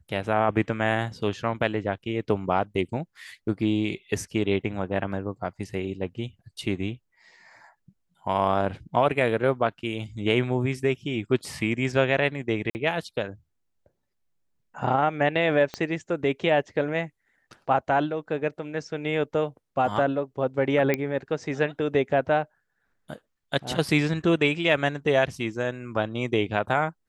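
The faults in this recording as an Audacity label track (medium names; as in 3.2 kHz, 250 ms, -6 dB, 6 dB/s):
12.700000	12.750000	dropout 49 ms
15.740000	15.740000	pop -17 dBFS
20.940000	20.940000	pop -11 dBFS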